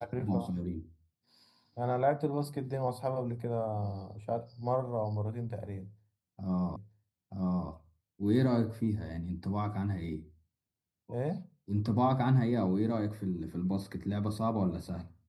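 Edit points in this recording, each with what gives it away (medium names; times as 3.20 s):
6.76 s: repeat of the last 0.93 s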